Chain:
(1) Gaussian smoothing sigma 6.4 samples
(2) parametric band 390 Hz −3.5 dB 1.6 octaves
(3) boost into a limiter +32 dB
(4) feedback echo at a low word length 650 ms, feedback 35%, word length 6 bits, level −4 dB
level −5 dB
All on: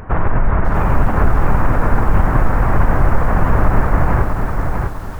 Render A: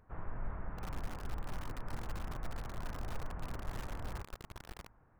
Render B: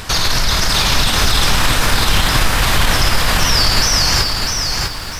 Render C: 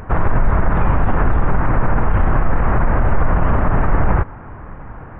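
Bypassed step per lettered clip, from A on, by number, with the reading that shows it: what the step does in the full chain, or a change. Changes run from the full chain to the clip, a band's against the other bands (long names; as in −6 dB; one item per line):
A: 3, change in crest factor +1.5 dB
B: 1, 2 kHz band +11.0 dB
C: 4, change in momentary loudness spread +8 LU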